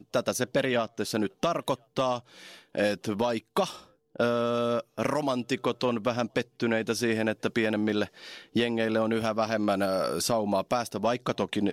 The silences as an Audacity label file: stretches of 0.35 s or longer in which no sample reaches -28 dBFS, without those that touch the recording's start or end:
2.180000	2.750000	silence
3.680000	4.200000	silence
8.050000	8.560000	silence